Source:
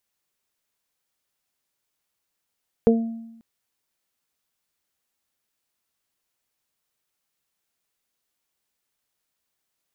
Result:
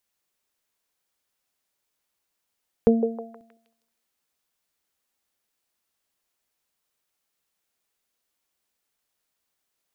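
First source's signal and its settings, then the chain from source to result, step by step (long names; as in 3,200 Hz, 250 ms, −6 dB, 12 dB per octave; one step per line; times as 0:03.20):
harmonic partials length 0.54 s, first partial 228 Hz, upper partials 4/−14.5 dB, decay 0.95 s, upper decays 0.24/0.61 s, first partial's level −14 dB
parametric band 130 Hz −9 dB 0.25 octaves
echo through a band-pass that steps 158 ms, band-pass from 510 Hz, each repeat 0.7 octaves, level −5 dB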